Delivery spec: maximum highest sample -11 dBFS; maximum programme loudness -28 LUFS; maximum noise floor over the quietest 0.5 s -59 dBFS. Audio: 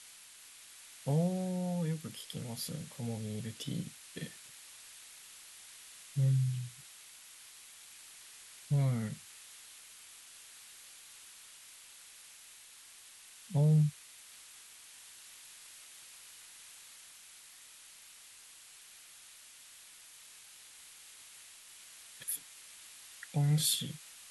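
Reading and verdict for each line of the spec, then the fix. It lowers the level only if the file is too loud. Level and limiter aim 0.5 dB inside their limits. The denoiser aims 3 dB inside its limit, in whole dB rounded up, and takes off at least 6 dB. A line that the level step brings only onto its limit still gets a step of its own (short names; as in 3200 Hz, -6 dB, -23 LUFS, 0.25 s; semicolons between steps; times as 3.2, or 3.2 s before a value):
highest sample -18.0 dBFS: OK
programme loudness -34.5 LUFS: OK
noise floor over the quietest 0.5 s -56 dBFS: fail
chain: denoiser 6 dB, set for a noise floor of -56 dBFS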